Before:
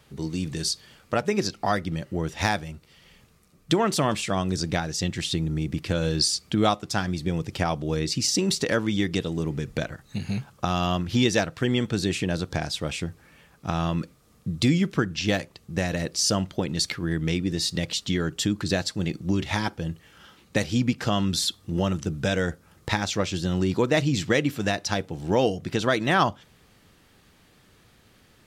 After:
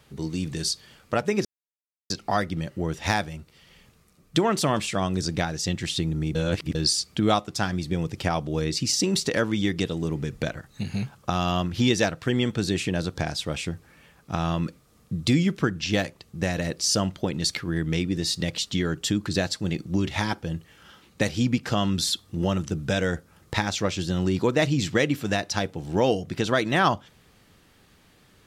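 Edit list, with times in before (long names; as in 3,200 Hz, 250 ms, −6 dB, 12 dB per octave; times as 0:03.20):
0:01.45: splice in silence 0.65 s
0:05.70–0:06.10: reverse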